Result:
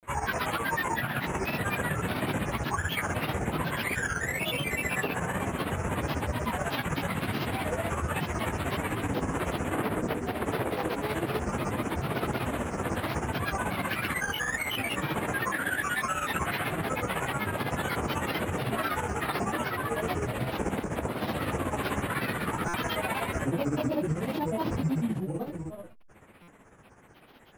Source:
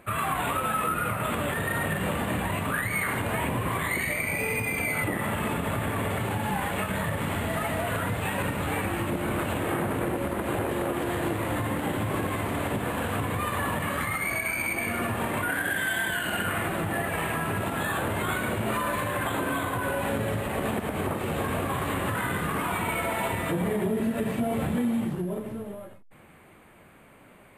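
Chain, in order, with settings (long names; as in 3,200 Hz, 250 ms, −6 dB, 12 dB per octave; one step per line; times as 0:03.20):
granular cloud 100 ms, grains 16 per second, pitch spread up and down by 7 semitones
buffer that repeats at 0:22.68/0:26.42, samples 256, times 9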